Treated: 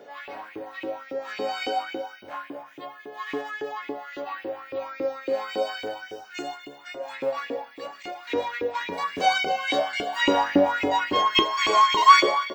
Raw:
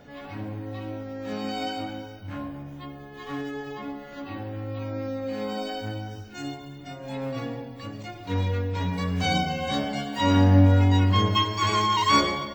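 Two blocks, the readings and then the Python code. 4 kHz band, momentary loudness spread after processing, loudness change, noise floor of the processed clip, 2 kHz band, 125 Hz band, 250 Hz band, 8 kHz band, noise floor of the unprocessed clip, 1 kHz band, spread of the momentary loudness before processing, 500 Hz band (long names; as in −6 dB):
+2.5 dB, 19 LU, +1.5 dB, −47 dBFS, +6.0 dB, −25.0 dB, −5.0 dB, +0.5 dB, −42 dBFS, +5.5 dB, 18 LU, +4.5 dB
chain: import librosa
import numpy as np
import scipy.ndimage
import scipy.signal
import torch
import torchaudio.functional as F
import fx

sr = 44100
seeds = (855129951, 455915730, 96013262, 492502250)

y = fx.octave_divider(x, sr, octaves=1, level_db=-4.0)
y = fx.filter_lfo_highpass(y, sr, shape='saw_up', hz=3.6, low_hz=340.0, high_hz=2600.0, q=4.4)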